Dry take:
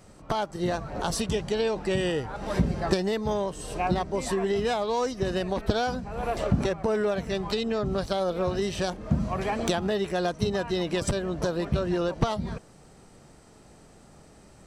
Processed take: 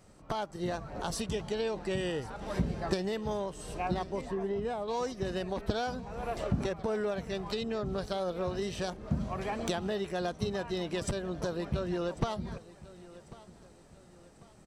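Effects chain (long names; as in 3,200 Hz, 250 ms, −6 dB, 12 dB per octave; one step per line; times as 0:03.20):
0:04.21–0:04.88: low-pass filter 1,000 Hz 6 dB per octave
repeating echo 1,095 ms, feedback 41%, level −19 dB
level −6.5 dB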